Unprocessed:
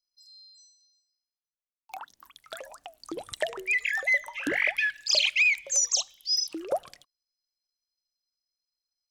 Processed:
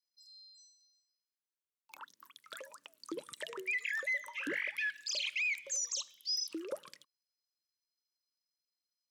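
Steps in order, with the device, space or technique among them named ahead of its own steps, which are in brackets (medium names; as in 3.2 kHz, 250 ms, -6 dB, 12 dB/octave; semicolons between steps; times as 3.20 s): PA system with an anti-feedback notch (high-pass 160 Hz 24 dB/octave; Butterworth band-stop 730 Hz, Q 2.1; peak limiter -24 dBFS, peak gain reduction 11.5 dB); trim -4.5 dB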